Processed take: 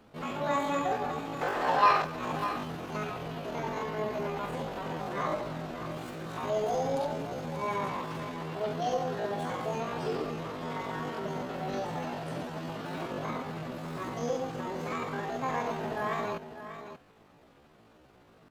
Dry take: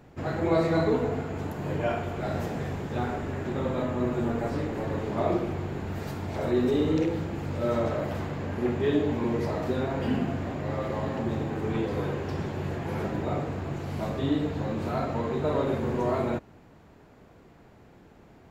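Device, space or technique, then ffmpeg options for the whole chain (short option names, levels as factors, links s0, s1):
chipmunk voice: -filter_complex "[0:a]asettb=1/sr,asplit=3[s0][s1][s2];[s0]atrim=end=1.424[s3];[s1]atrim=start=1.42:end=2.05,asetpts=PTS-STARTPTS,afade=t=in:d=0.004:c=qsin,afade=t=out:st=0.626:d=0.004:c=qsin,equalizer=f=125:t=o:w=1:g=-7,equalizer=f=250:t=o:w=1:g=7,equalizer=f=500:t=o:w=1:g=11,equalizer=f=1000:t=o:w=1:g=10,equalizer=f=2000:t=o:w=1:g=4,equalizer=f=4000:t=o:w=1:g=7[s4];[s2]atrim=start=2.046[s5];[s3][s4]acrossfade=d=0.004:c1=hsin:c2=qsin[s6];[s6][s5]acrossfade=d=0.004:c1=qsin:c2=hsin,aecho=1:1:593:0.282,asetrate=76340,aresample=44100,atempo=0.577676,volume=0.531"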